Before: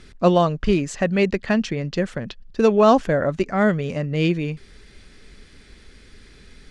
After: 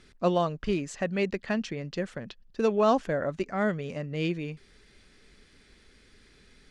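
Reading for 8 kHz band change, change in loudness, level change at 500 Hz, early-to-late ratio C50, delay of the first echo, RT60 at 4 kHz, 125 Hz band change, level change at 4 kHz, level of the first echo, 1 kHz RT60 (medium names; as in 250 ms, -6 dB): no reading, -8.5 dB, -8.5 dB, no reverb, no echo, no reverb, -10.5 dB, -8.0 dB, no echo, no reverb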